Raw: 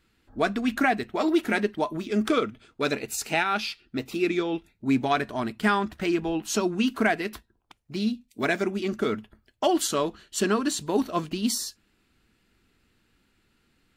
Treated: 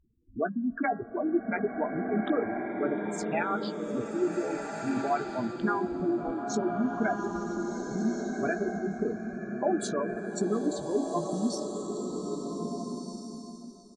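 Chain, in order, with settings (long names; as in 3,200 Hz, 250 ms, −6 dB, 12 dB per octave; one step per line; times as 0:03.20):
adaptive Wiener filter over 25 samples
reverb reduction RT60 1.1 s
gate on every frequency bin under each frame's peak −10 dB strong
high-shelf EQ 5,300 Hz −5.5 dB
hum removal 272.7 Hz, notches 7
downward compressor 1.5 to 1, threshold −31 dBFS, peak gain reduction 5 dB
pitch-shifted copies added −3 semitones −15 dB
double-tracking delay 17 ms −11 dB
single-tap delay 703 ms −23 dB
slow-attack reverb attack 1,650 ms, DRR 2.5 dB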